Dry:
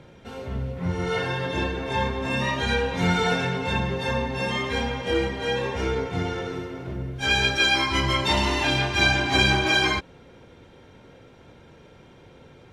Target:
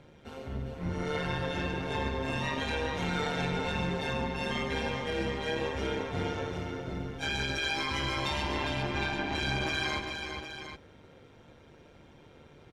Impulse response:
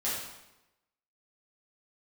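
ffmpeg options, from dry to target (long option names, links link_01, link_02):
-filter_complex "[0:a]asettb=1/sr,asplit=3[link_01][link_02][link_03];[link_01]atrim=end=8.424[link_04];[link_02]atrim=start=8.42:end=9.35,asetpts=PTS-STARTPTS,afade=type=in:duration=0.004:curve=qsin,afade=type=out:start_time=0.926:duration=0.004:curve=qsin,lowpass=frequency=1800:poles=1[link_05];[link_03]atrim=start=9.346[link_06];[link_04][link_05]acrossfade=duration=0.004:curve1=hsin:curve2=qsin[link_07];[link_07][link_06]acrossfade=duration=0.004:curve1=qsin:curve2=hsin,alimiter=limit=-17.5dB:level=0:latency=1:release=32,tremolo=f=150:d=0.621,asplit=2[link_08][link_09];[link_09]aecho=0:1:141|405|760:0.299|0.473|0.316[link_10];[link_08][link_10]amix=inputs=2:normalize=0,volume=-4dB"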